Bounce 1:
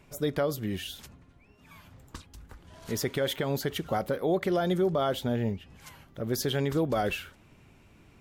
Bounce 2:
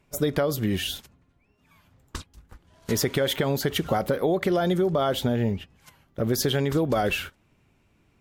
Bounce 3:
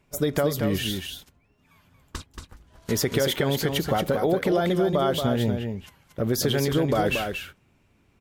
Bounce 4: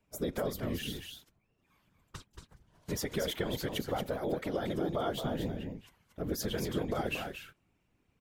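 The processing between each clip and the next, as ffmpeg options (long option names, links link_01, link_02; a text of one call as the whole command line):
ffmpeg -i in.wav -af "acompressor=threshold=-29dB:ratio=5,agate=range=-16dB:threshold=-44dB:ratio=16:detection=peak,volume=9dB" out.wav
ffmpeg -i in.wav -af "aecho=1:1:230:0.501" out.wav
ffmpeg -i in.wav -af "afftfilt=real='hypot(re,im)*cos(2*PI*random(0))':imag='hypot(re,im)*sin(2*PI*random(1))':win_size=512:overlap=0.75,volume=-5dB" out.wav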